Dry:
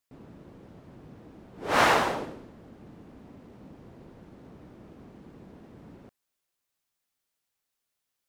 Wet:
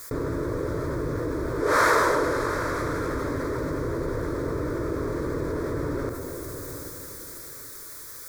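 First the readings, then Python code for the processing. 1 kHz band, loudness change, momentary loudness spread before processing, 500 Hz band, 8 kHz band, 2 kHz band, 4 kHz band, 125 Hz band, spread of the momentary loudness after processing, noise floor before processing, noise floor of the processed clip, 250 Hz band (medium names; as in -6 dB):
+3.0 dB, -2.5 dB, 19 LU, +9.5 dB, +7.0 dB, +4.0 dB, -2.0 dB, +15.0 dB, 16 LU, -83 dBFS, -41 dBFS, +11.5 dB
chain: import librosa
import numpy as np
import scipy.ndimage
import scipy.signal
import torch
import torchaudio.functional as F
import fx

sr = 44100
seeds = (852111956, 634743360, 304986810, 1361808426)

y = fx.fixed_phaser(x, sr, hz=770.0, stages=6)
y = fx.rev_double_slope(y, sr, seeds[0], early_s=0.38, late_s=3.9, knee_db=-17, drr_db=10.5)
y = fx.env_flatten(y, sr, amount_pct=70)
y = y * librosa.db_to_amplitude(3.0)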